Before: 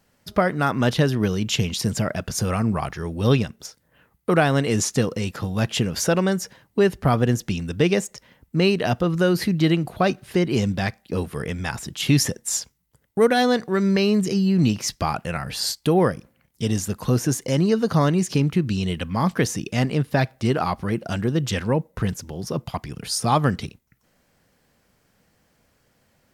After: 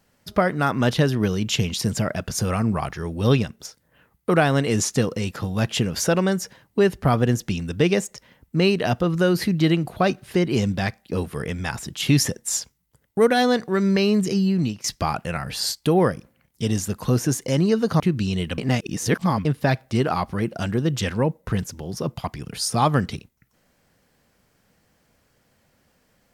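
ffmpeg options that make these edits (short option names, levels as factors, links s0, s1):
-filter_complex "[0:a]asplit=5[s0][s1][s2][s3][s4];[s0]atrim=end=14.84,asetpts=PTS-STARTPTS,afade=t=out:st=14.44:d=0.4:silence=0.16788[s5];[s1]atrim=start=14.84:end=18.002,asetpts=PTS-STARTPTS,afade=t=in:d=0.004:c=hsin:silence=0.16788[s6];[s2]atrim=start=18.498:end=19.082[s7];[s3]atrim=start=19.078:end=19.952,asetpts=PTS-STARTPTS,areverse[s8];[s4]atrim=start=19.948[s9];[s5][s6]concat=n=2:v=0:a=1[s10];[s10][s7]acrossfade=d=0.004:c1=hsin:c2=hsin[s11];[s11][s8]acrossfade=d=0.004:c1=hsin:c2=hsin[s12];[s12][s9]acrossfade=d=0.004:c1=hsin:c2=hsin"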